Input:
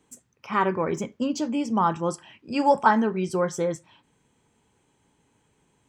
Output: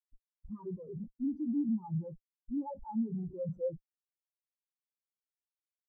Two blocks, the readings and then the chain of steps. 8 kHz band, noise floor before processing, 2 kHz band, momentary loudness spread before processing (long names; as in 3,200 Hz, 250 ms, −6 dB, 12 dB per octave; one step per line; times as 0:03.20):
below −40 dB, −69 dBFS, below −40 dB, 10 LU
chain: comparator with hysteresis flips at −35.5 dBFS
every bin expanded away from the loudest bin 4 to 1
level −4.5 dB